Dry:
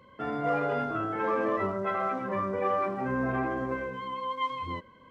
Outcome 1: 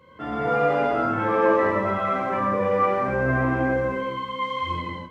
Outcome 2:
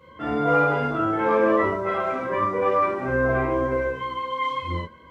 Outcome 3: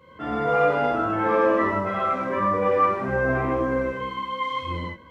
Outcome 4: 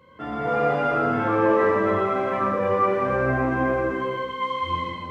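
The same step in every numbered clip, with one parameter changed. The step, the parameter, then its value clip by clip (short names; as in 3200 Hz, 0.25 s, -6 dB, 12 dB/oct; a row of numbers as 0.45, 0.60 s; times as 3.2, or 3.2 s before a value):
non-linear reverb, gate: 300, 90, 180, 460 ms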